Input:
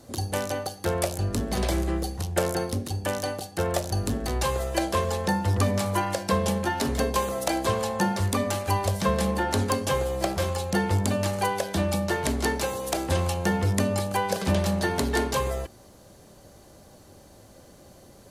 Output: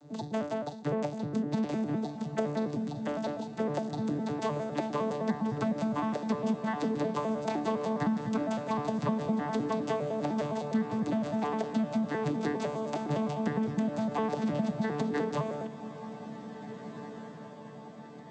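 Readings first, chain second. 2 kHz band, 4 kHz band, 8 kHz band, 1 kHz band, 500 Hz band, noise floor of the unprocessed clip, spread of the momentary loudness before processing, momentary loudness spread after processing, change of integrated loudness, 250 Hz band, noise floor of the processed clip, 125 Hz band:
-10.5 dB, -14.0 dB, -19.5 dB, -6.5 dB, -5.5 dB, -51 dBFS, 5 LU, 12 LU, -5.5 dB, -1.0 dB, -45 dBFS, -10.0 dB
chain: arpeggiated vocoder bare fifth, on D3, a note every 0.102 s; compressor, threshold -26 dBFS, peak gain reduction 9.5 dB; on a send: diffused feedback echo 1.835 s, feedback 56%, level -12 dB

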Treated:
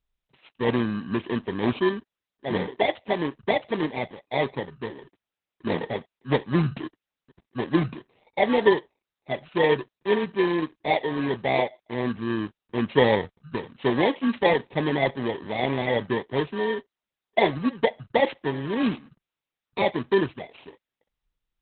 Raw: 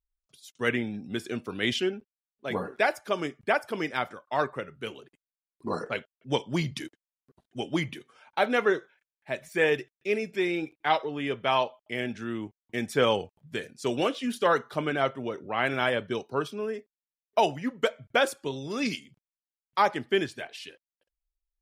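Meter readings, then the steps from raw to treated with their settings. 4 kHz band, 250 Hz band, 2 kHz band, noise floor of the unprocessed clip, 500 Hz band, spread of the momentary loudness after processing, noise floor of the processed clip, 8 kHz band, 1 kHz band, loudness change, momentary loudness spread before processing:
0.0 dB, +6.0 dB, +0.5 dB, under -85 dBFS, +4.0 dB, 12 LU, under -85 dBFS, under -35 dB, +1.0 dB, +3.5 dB, 12 LU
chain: FFT order left unsorted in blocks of 32 samples; gain +7.5 dB; Opus 8 kbps 48000 Hz

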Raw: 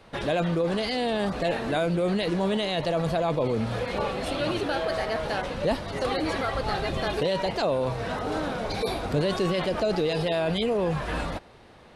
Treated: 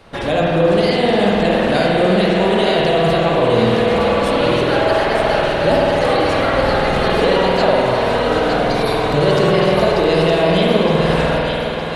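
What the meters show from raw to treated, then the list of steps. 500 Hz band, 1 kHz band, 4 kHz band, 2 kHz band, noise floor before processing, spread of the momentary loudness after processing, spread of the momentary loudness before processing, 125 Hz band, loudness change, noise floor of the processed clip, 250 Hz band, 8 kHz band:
+12.5 dB, +13.0 dB, +11.0 dB, +13.0 dB, -51 dBFS, 2 LU, 4 LU, +10.5 dB, +12.0 dB, -20 dBFS, +11.0 dB, n/a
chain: on a send: thinning echo 0.914 s, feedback 59%, high-pass 590 Hz, level -5 dB; on the sum: spring tank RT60 3.1 s, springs 49 ms, chirp 55 ms, DRR -3.5 dB; gain +6.5 dB

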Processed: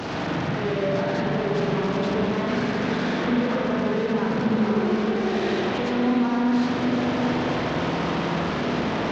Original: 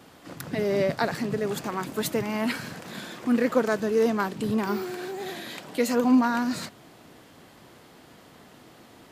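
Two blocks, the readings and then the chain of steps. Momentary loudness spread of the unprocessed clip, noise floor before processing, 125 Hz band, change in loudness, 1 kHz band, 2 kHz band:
14 LU, -52 dBFS, +9.5 dB, +2.5 dB, +5.0 dB, +5.0 dB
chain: delta modulation 32 kbps, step -20 dBFS; HPF 60 Hz; on a send: delay with a stepping band-pass 0.377 s, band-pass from 190 Hz, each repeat 0.7 oct, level -2 dB; on the sum: limiter -16 dBFS, peak gain reduction 7.5 dB; high shelf 2900 Hz -10.5 dB; spring tank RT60 3.1 s, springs 41/53 ms, chirp 30 ms, DRR -3.5 dB; gain -3.5 dB

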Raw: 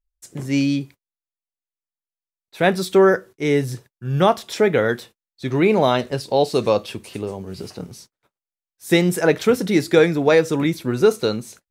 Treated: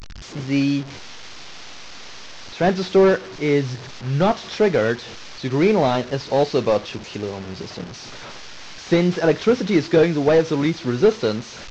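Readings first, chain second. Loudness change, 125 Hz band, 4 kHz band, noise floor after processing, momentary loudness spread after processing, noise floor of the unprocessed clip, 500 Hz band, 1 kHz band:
-1.0 dB, +0.5 dB, -0.5 dB, -37 dBFS, 21 LU, under -85 dBFS, -0.5 dB, -1.5 dB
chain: delta modulation 32 kbps, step -29.5 dBFS

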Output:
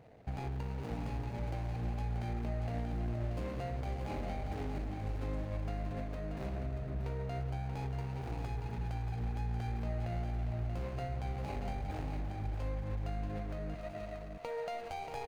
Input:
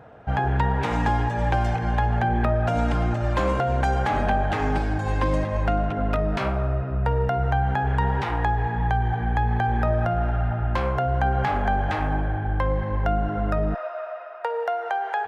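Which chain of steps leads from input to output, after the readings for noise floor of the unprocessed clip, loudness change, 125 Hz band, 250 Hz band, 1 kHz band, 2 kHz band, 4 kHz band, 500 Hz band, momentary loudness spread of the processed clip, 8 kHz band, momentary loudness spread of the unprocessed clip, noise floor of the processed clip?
-32 dBFS, -15.0 dB, -13.0 dB, -14.0 dB, -20.5 dB, -21.0 dB, -14.5 dB, -16.0 dB, 3 LU, n/a, 3 LU, -44 dBFS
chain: median filter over 41 samples; compressor, threshold -27 dBFS, peak gain reduction 8.5 dB; on a send: echo 0.633 s -7 dB; on the sum: gain -8.5 dB

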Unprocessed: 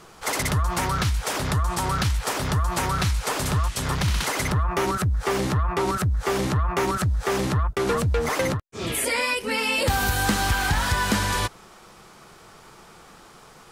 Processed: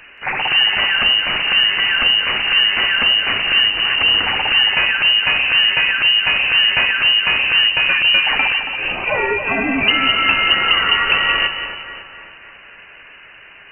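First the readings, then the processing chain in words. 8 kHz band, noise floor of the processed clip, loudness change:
under -40 dB, -42 dBFS, +11.0 dB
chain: inverted band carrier 2900 Hz; split-band echo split 2000 Hz, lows 0.277 s, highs 0.177 s, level -8 dB; gain +6.5 dB

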